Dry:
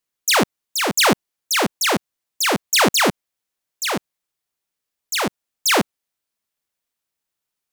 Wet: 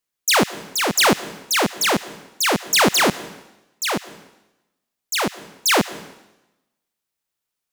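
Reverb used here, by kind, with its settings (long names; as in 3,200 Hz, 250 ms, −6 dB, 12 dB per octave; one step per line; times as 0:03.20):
dense smooth reverb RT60 0.99 s, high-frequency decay 0.95×, pre-delay 105 ms, DRR 17 dB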